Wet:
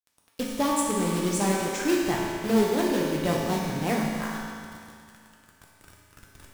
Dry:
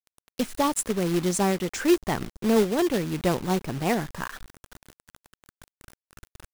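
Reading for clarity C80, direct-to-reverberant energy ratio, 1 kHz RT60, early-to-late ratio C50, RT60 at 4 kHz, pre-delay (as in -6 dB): 1.0 dB, -3.5 dB, 2.2 s, -0.5 dB, 2.1 s, 3 ms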